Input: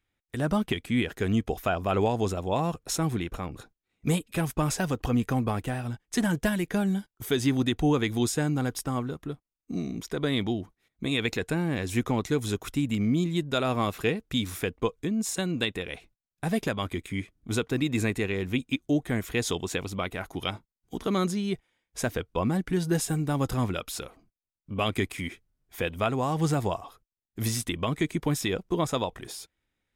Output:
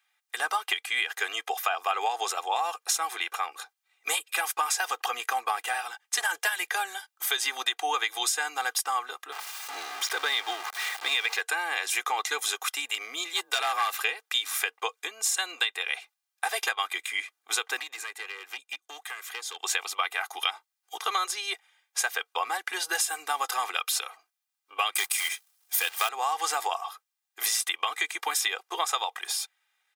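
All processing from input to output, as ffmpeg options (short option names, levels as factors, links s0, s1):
-filter_complex "[0:a]asettb=1/sr,asplit=3[s0][s1][s2];[s0]atrim=end=9.324[s3];[s1]atrim=start=9.32:end=11.41,asetpts=PTS-STARTPTS,afade=t=in:d=0.004:c=qsin,afade=t=out:st=2.086:d=0.004:c=qsin,aeval=exprs='val(0)+0.5*0.0237*sgn(val(0))':c=same,highshelf=f=6000:g=-8[s4];[s2]atrim=start=11.406[s5];[s3][s4]acrossfade=d=0.004:c1=hsin:c2=qsin[s6];[s6][s5]acrossfade=d=0.004:c1=qsin:c2=hsin,asettb=1/sr,asplit=3[s7][s8][s9];[s7]atrim=end=13.334[s10];[s8]atrim=start=13.33:end=13.97,asetpts=PTS-STARTPTS,afade=t=in:d=0.004:c=qsin,afade=t=out:st=0.636:d=0.004:c=qsin,highshelf=f=6700:g=5.5,afreqshift=40,volume=12.6,asoftclip=hard,volume=0.0794[s11];[s9]atrim=start=13.966[s12];[s10][s11]acrossfade=d=0.004:c1=hsin:c2=qsin[s13];[s13][s12]acrossfade=d=0.004:c1=qsin:c2=hsin,asettb=1/sr,asplit=3[s14][s15][s16];[s14]atrim=end=17.794[s17];[s15]atrim=start=17.79:end=19.64,asetpts=PTS-STARTPTS,afade=t=in:d=0.004:c=qsin,afade=t=out:st=1.846:d=0.004:c=qsin,acrossover=split=100|910[s18][s19][s20];[s18]acompressor=threshold=0.00562:ratio=4[s21];[s19]acompressor=threshold=0.0112:ratio=4[s22];[s20]acompressor=threshold=0.00501:ratio=4[s23];[s21][s22][s23]amix=inputs=3:normalize=0,aeval=exprs='clip(val(0),-1,0.0211)':c=same[s24];[s16]atrim=start=19.636[s25];[s17][s24]acrossfade=d=0.004:c1=hsin:c2=qsin[s26];[s26][s25]acrossfade=d=0.004:c1=qsin:c2=hsin,asettb=1/sr,asplit=3[s27][s28][s29];[s27]atrim=end=24.954[s30];[s28]atrim=start=24.95:end=26.09,asetpts=PTS-STARTPTS,afade=t=in:d=0.004:c=qsin,afade=t=out:st=1.136:d=0.004:c=qsin,bass=f=250:g=8,treble=f=4000:g=14,bandreject=f=7200:w=16,acrusher=bits=3:mode=log:mix=0:aa=0.000001[s31];[s29]atrim=start=26.086[s32];[s30][s31]acrossfade=d=0.004:c1=hsin:c2=qsin[s33];[s33][s32]acrossfade=d=0.004:c1=qsin:c2=hsin,highpass=f=820:w=0.5412,highpass=f=820:w=1.3066,aecho=1:1:2.5:0.75,acompressor=threshold=0.0251:ratio=6,volume=2.66"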